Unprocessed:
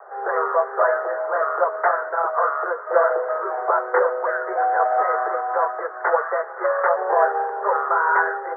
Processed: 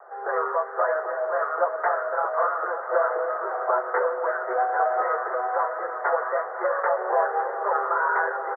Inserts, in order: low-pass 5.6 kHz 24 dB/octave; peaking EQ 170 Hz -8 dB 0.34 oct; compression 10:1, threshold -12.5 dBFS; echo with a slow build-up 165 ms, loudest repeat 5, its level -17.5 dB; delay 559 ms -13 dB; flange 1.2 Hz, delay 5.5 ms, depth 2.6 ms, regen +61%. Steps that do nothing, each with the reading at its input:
low-pass 5.6 kHz: input has nothing above 2 kHz; peaking EQ 170 Hz: input has nothing below 340 Hz

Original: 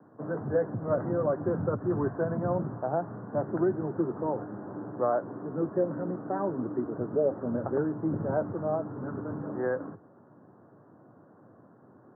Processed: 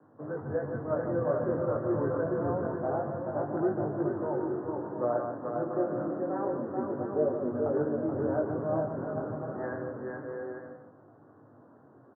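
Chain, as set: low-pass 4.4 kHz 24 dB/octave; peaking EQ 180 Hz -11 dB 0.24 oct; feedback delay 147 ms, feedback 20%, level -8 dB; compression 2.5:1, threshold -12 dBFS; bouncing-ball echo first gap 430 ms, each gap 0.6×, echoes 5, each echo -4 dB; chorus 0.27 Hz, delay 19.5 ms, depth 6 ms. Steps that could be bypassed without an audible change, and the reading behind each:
low-pass 4.4 kHz: input has nothing above 1.7 kHz; compression, threshold -12 dBFS: peak at its input -15.0 dBFS

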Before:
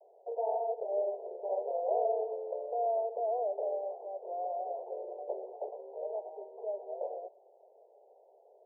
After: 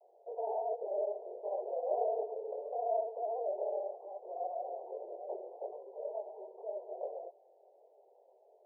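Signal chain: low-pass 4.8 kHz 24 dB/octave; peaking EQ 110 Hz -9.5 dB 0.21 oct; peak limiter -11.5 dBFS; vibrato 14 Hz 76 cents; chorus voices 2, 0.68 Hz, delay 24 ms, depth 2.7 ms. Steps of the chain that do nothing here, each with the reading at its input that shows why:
low-pass 4.8 kHz: input has nothing above 960 Hz; peaking EQ 110 Hz: input has nothing below 340 Hz; peak limiter -11.5 dBFS: peak at its input -20.0 dBFS

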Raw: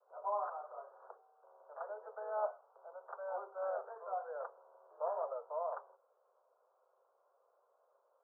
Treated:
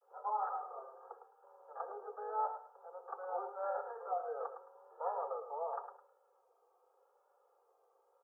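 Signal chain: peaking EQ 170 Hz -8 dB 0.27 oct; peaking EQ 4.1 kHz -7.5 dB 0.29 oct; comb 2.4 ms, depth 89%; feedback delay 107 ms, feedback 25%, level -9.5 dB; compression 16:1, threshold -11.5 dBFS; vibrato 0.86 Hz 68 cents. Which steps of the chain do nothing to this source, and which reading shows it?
peaking EQ 170 Hz: input has nothing below 360 Hz; peaking EQ 4.1 kHz: input has nothing above 1.6 kHz; compression, threshold -11.5 dBFS: peak at its input -25.0 dBFS

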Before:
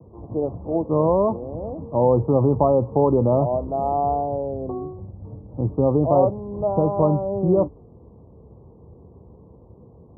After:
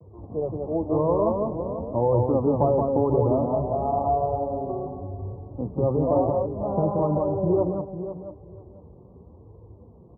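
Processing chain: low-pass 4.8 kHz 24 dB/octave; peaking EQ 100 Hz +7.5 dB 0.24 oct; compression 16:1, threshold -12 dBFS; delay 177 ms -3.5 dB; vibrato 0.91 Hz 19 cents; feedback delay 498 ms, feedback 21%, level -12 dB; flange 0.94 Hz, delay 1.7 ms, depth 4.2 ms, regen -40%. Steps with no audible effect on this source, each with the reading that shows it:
low-pass 4.8 kHz: input has nothing above 1.2 kHz

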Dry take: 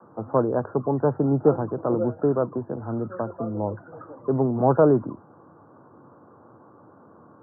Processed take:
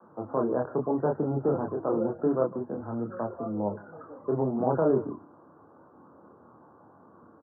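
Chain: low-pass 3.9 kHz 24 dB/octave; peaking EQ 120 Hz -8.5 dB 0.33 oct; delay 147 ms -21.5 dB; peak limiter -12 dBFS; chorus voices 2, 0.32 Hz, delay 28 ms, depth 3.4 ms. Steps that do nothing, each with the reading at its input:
low-pass 3.9 kHz: input has nothing above 1.4 kHz

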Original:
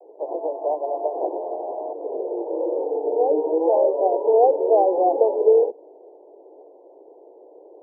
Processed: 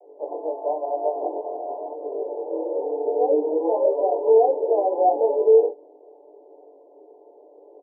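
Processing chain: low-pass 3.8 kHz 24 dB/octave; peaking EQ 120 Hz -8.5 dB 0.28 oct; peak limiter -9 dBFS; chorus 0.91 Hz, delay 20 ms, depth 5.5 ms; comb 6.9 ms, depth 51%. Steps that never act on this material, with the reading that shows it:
low-pass 3.8 kHz: input has nothing above 1 kHz; peaking EQ 120 Hz: input has nothing below 270 Hz

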